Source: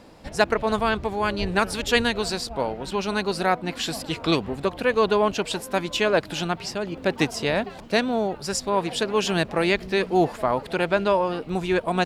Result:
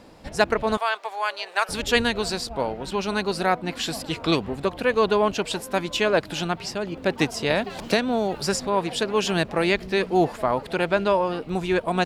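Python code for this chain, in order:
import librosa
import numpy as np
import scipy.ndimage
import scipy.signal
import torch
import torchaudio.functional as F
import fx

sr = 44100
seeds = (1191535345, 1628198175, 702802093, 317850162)

y = fx.highpass(x, sr, hz=620.0, slope=24, at=(0.77, 1.69))
y = fx.band_squash(y, sr, depth_pct=100, at=(7.5, 8.67))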